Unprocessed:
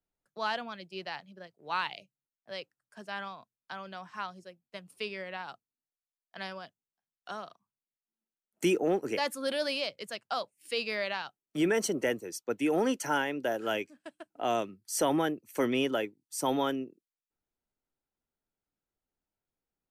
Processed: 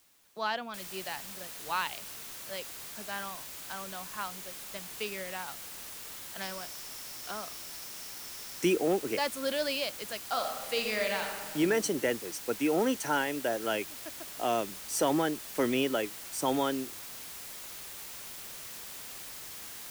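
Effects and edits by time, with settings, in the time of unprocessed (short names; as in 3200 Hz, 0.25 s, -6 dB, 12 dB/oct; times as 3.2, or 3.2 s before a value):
0.74 noise floor step -65 dB -44 dB
6.41–8.65 bell 5400 Hz +8 dB 0.21 oct
10.28–11.58 reverb throw, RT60 1.5 s, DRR 2.5 dB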